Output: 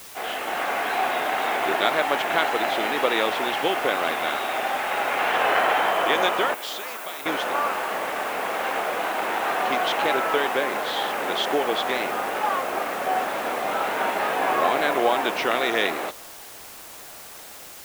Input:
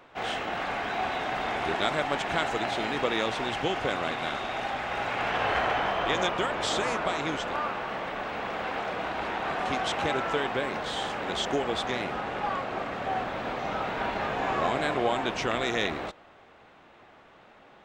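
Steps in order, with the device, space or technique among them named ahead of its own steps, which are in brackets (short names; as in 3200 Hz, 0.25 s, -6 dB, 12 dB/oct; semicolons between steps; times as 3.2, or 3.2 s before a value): dictaphone (BPF 330–4200 Hz; AGC gain up to 5 dB; wow and flutter; white noise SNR 18 dB); 6.54–7.26 pre-emphasis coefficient 0.8; gain +1.5 dB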